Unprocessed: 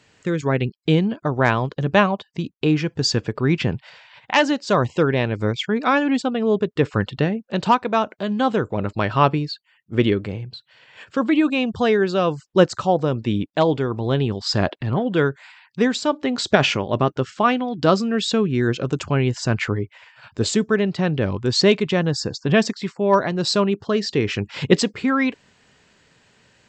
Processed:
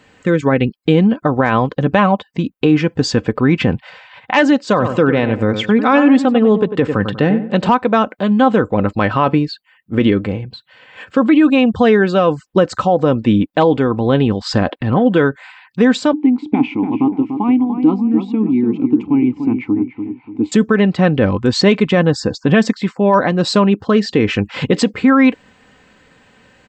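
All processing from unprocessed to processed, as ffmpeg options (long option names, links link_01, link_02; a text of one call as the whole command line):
ffmpeg -i in.wav -filter_complex "[0:a]asettb=1/sr,asplit=3[link_01][link_02][link_03];[link_01]atrim=end=4.664[link_04];[link_02]atrim=start=4.66:end=7.69,asetpts=PTS-STARTPTS,afade=type=in:duration=0.004:curve=qsin,afade=type=out:start_time=3.026:duration=0.004:curve=qsin,highpass=frequency=67:width=0.5412,highpass=frequency=67:width=1.3066,asplit=2[link_05][link_06];[link_06]adelay=96,lowpass=frequency=2000:poles=1,volume=-11dB,asplit=2[link_07][link_08];[link_08]adelay=96,lowpass=frequency=2000:poles=1,volume=0.33,asplit=2[link_09][link_10];[link_10]adelay=96,lowpass=frequency=2000:poles=1,volume=0.33,asplit=2[link_11][link_12];[link_12]adelay=96,lowpass=frequency=2000:poles=1,volume=0.33[link_13];[link_05][link_07][link_09][link_11][link_13]amix=inputs=5:normalize=0,atrim=end_sample=133623[link_14];[link_03]atrim=start=7.686[link_15];[link_04][link_14]acrossfade=duration=0.004:curve1=hsin:curve2=qsin[link_16];[link_16][link_15]acrossfade=duration=0.004:curve1=qsin:curve2=hsin,asettb=1/sr,asplit=3[link_17][link_18][link_19];[link_17]atrim=end=16.134[link_20];[link_18]atrim=start=16.13:end=20.52,asetpts=PTS-STARTPTS,afade=type=in:duration=0.004:curve=qsin,afade=type=out:start_time=4.386:duration=0.004:curve=qsin,asplit=3[link_21][link_22][link_23];[link_21]bandpass=frequency=300:width_type=q:width=8,volume=0dB[link_24];[link_22]bandpass=frequency=870:width_type=q:width=8,volume=-6dB[link_25];[link_23]bandpass=frequency=2240:width_type=q:width=8,volume=-9dB[link_26];[link_24][link_25][link_26]amix=inputs=3:normalize=0,lowshelf=frequency=440:gain=11,asplit=2[link_27][link_28];[link_28]adelay=292,lowpass=frequency=1600:poles=1,volume=-8dB,asplit=2[link_29][link_30];[link_30]adelay=292,lowpass=frequency=1600:poles=1,volume=0.4,asplit=2[link_31][link_32];[link_32]adelay=292,lowpass=frequency=1600:poles=1,volume=0.4,asplit=2[link_33][link_34];[link_34]adelay=292,lowpass=frequency=1600:poles=1,volume=0.4,asplit=2[link_35][link_36];[link_36]adelay=292,lowpass=frequency=1600:poles=1,volume=0.4[link_37];[link_27][link_29][link_31][link_33][link_35][link_37]amix=inputs=6:normalize=0,atrim=end_sample=193599[link_38];[link_19]atrim=start=20.516[link_39];[link_20][link_38]acrossfade=duration=0.004:curve1=hsin:curve2=qsin[link_40];[link_40][link_39]acrossfade=duration=0.004:curve1=qsin:curve2=hsin,equalizer=frequency=5700:width=0.84:gain=-10,aecho=1:1:3.9:0.4,alimiter=level_in=10.5dB:limit=-1dB:release=50:level=0:latency=1,volume=-2dB" out.wav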